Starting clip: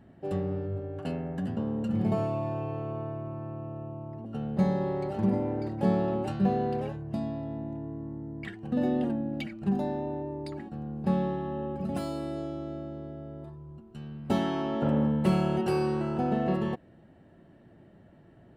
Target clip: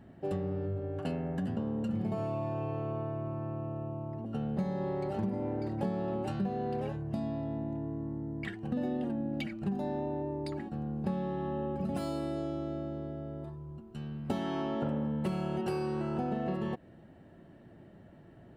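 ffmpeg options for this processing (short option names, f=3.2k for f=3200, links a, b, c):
-af "acompressor=threshold=-31dB:ratio=6,volume=1dB"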